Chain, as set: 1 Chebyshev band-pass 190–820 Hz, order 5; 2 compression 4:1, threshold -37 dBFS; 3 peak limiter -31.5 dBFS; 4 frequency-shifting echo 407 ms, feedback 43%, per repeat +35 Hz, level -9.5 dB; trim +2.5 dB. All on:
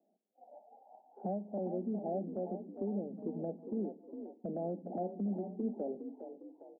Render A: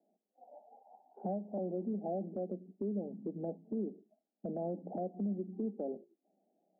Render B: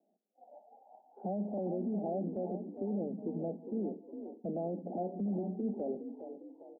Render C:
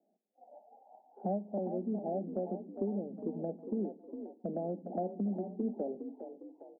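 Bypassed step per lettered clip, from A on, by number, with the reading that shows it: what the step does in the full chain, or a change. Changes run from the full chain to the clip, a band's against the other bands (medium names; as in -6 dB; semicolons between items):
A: 4, echo-to-direct -8.5 dB to none; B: 2, mean gain reduction 8.5 dB; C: 3, crest factor change +2.0 dB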